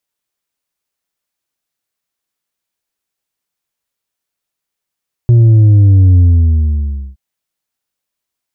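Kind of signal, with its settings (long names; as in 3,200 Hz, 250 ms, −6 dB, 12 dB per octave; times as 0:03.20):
bass drop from 120 Hz, over 1.87 s, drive 4 dB, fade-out 0.98 s, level −4 dB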